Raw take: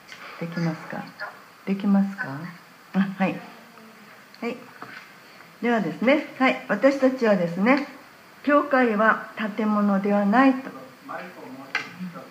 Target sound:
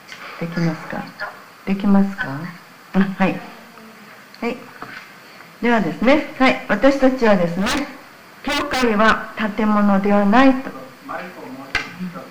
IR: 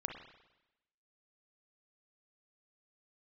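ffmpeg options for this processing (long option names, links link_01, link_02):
-filter_complex "[0:a]asplit=3[link_01][link_02][link_03];[link_01]afade=type=out:start_time=7.47:duration=0.02[link_04];[link_02]aeval=exprs='0.0944*(abs(mod(val(0)/0.0944+3,4)-2)-1)':channel_layout=same,afade=type=in:start_time=7.47:duration=0.02,afade=type=out:start_time=8.82:duration=0.02[link_05];[link_03]afade=type=in:start_time=8.82:duration=0.02[link_06];[link_04][link_05][link_06]amix=inputs=3:normalize=0,aeval=exprs='(tanh(5.62*val(0)+0.65)-tanh(0.65))/5.62':channel_layout=same,asplit=2[link_07][link_08];[1:a]atrim=start_sample=2205[link_09];[link_08][link_09]afir=irnorm=-1:irlink=0,volume=-17.5dB[link_10];[link_07][link_10]amix=inputs=2:normalize=0,volume=8.5dB"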